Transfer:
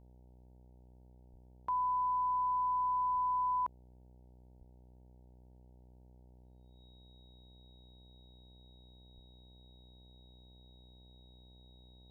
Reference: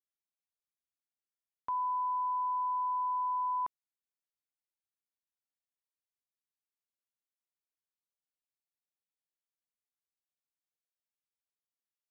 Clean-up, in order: de-hum 62 Hz, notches 15; band-stop 3.8 kHz, Q 30; de-plosive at 1.31/3.12/4.58/9.14 s

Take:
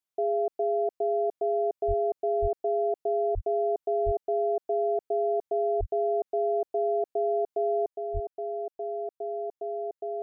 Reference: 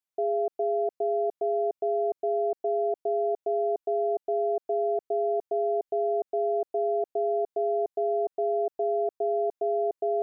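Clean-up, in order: de-plosive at 1.87/2.41/3.34/4.05/5.79/8.13 s; gain correction +6.5 dB, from 7.87 s

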